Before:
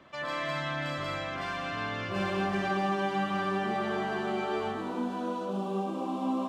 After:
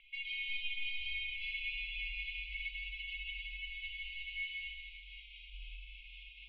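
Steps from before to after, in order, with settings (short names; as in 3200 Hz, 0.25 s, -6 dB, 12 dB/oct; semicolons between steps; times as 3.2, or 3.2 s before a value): limiter -25 dBFS, peak gain reduction 7 dB; brick-wall FIR band-stop 170–2200 Hz; mistuned SSB -150 Hz 150–3200 Hz; gain +6 dB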